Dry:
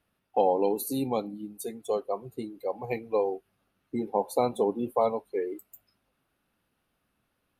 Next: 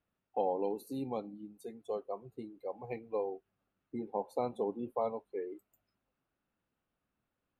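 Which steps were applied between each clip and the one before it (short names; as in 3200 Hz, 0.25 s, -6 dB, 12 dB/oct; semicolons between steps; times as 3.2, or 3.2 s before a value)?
LPF 2200 Hz 6 dB/oct; gain -8.5 dB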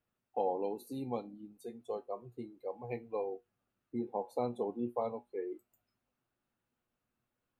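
resonator 120 Hz, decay 0.16 s, harmonics all, mix 70%; gain +4.5 dB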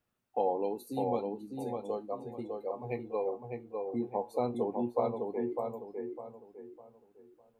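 darkening echo 0.604 s, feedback 34%, low-pass 2000 Hz, level -3.5 dB; gain +3 dB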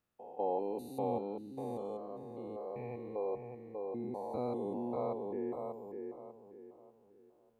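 stepped spectrum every 0.2 s; gain -2 dB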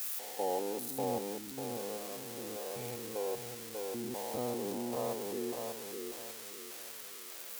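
switching spikes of -30 dBFS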